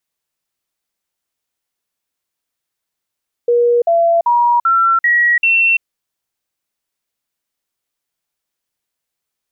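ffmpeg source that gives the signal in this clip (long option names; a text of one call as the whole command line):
ffmpeg -f lavfi -i "aevalsrc='0.355*clip(min(mod(t,0.39),0.34-mod(t,0.39))/0.005,0,1)*sin(2*PI*478*pow(2,floor(t/0.39)/2)*mod(t,0.39))':duration=2.34:sample_rate=44100" out.wav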